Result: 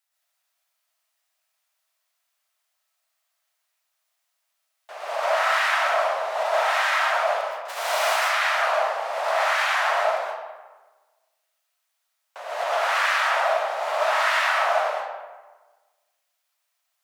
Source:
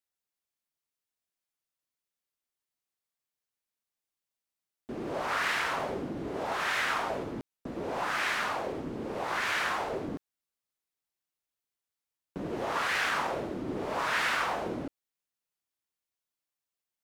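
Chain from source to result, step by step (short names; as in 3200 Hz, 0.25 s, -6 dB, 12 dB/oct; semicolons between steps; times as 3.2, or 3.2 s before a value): 7.68–8.15 spectral whitening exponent 0.6; elliptic high-pass 630 Hz, stop band 50 dB; in parallel at +2 dB: negative-ratio compressor -37 dBFS, ratio -0.5; on the sum: reverb RT60 1.3 s, pre-delay 80 ms, DRR -5.5 dB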